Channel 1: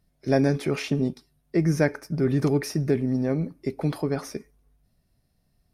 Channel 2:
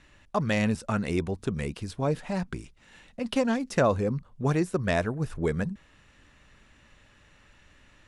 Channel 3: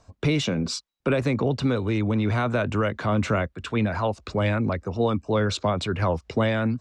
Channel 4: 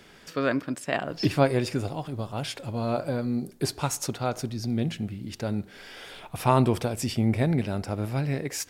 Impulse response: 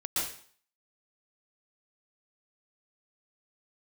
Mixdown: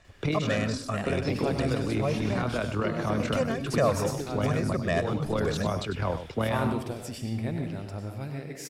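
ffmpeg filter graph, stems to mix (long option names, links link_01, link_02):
-filter_complex "[0:a]acompressor=threshold=-30dB:ratio=6,adelay=1300,volume=-5.5dB,asplit=2[link_01][link_02];[link_02]volume=-7.5dB[link_03];[1:a]aecho=1:1:1.7:0.65,volume=-4.5dB,asplit=3[link_04][link_05][link_06];[link_05]volume=-16.5dB[link_07];[2:a]acontrast=87,tremolo=f=39:d=0.571,volume=-10dB,asplit=2[link_08][link_09];[link_09]volume=-10dB[link_10];[3:a]asoftclip=type=hard:threshold=-9.5dB,adelay=50,volume=-11.5dB,asplit=3[link_11][link_12][link_13];[link_12]volume=-9dB[link_14];[link_13]volume=-7.5dB[link_15];[link_06]apad=whole_len=300028[link_16];[link_08][link_16]sidechaincompress=threshold=-31dB:ratio=8:attack=16:release=155[link_17];[4:a]atrim=start_sample=2205[link_18];[link_03][link_14]amix=inputs=2:normalize=0[link_19];[link_19][link_18]afir=irnorm=-1:irlink=0[link_20];[link_07][link_10][link_15]amix=inputs=3:normalize=0,aecho=0:1:98:1[link_21];[link_01][link_04][link_17][link_11][link_20][link_21]amix=inputs=6:normalize=0"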